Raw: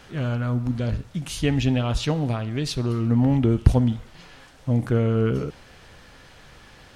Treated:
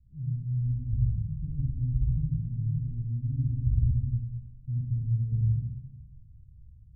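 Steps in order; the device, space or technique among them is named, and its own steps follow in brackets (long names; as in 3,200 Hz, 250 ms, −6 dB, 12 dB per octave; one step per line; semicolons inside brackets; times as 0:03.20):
club heard from the street (brickwall limiter −13 dBFS, peak gain reduction 11 dB; low-pass filter 120 Hz 24 dB per octave; convolution reverb RT60 1.1 s, pre-delay 51 ms, DRR −6 dB)
level −4 dB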